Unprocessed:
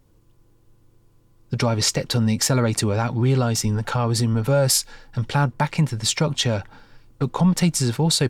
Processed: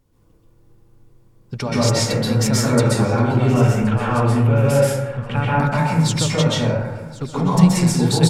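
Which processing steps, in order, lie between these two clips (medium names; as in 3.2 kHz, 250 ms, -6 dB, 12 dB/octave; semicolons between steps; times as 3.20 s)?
3.36–5.45 s: resonant high shelf 3.5 kHz -7.5 dB, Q 3; feedback delay 1073 ms, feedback 26%, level -20 dB; plate-style reverb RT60 1.2 s, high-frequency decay 0.3×, pre-delay 115 ms, DRR -7.5 dB; trim -4.5 dB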